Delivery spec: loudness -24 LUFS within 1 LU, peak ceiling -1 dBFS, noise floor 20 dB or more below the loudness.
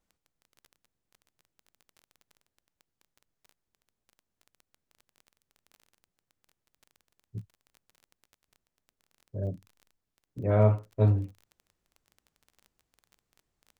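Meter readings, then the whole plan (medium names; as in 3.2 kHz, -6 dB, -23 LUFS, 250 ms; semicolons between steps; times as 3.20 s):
tick rate 20 per s; loudness -28.0 LUFS; peak level -10.0 dBFS; loudness target -24.0 LUFS
-> de-click; trim +4 dB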